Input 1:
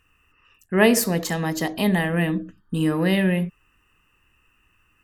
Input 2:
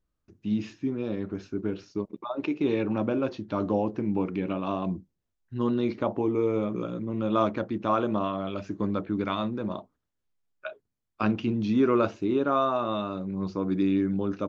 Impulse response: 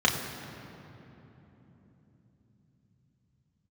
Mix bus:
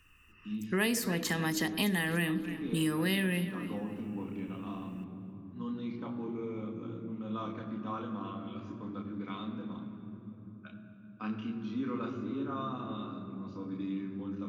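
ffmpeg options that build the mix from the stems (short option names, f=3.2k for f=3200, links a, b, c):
-filter_complex "[0:a]volume=1.5dB,asplit=2[a][b];[b]volume=-18dB[c];[1:a]volume=-18.5dB,asplit=2[d][e];[e]volume=-6dB[f];[2:a]atrim=start_sample=2205[g];[f][g]afir=irnorm=-1:irlink=0[h];[c]aecho=0:1:288|576|864|1152:1|0.29|0.0841|0.0244[i];[a][d][h][i]amix=inputs=4:normalize=0,equalizer=f=630:w=1.3:g=-10.5,acrossover=split=200|3900[j][k][l];[j]acompressor=threshold=-45dB:ratio=4[m];[k]acompressor=threshold=-30dB:ratio=4[n];[l]acompressor=threshold=-38dB:ratio=4[o];[m][n][o]amix=inputs=3:normalize=0"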